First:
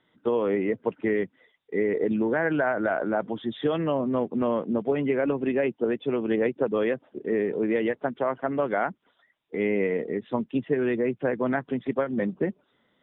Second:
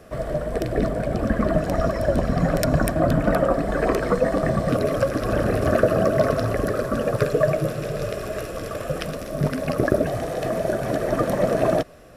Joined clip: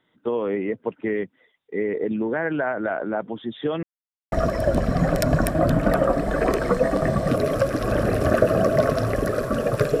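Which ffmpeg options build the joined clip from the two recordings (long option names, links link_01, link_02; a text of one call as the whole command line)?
ffmpeg -i cue0.wav -i cue1.wav -filter_complex "[0:a]apad=whole_dur=10,atrim=end=10,asplit=2[link_01][link_02];[link_01]atrim=end=3.83,asetpts=PTS-STARTPTS,afade=type=out:start_time=3.826:duration=0.004:curve=hsin[link_03];[link_02]atrim=start=3.83:end=4.32,asetpts=PTS-STARTPTS,volume=0[link_04];[1:a]atrim=start=1.73:end=7.41,asetpts=PTS-STARTPTS,afade=type=in:duration=0.004:curve=hsin[link_05];[link_03][link_04][link_05]concat=n=3:v=0:a=1" out.wav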